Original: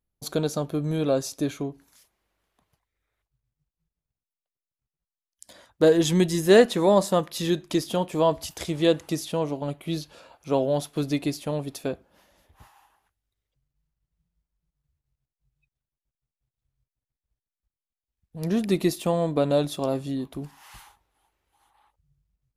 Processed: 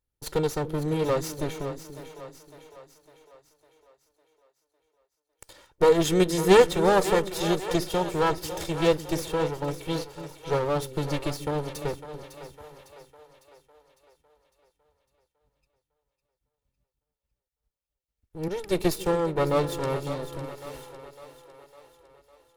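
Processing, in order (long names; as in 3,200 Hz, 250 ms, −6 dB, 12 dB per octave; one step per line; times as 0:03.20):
lower of the sound and its delayed copy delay 2.2 ms
echo with a time of its own for lows and highs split 430 Hz, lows 290 ms, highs 554 ms, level −11 dB
0:18.48–0:19.69: multiband upward and downward expander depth 70%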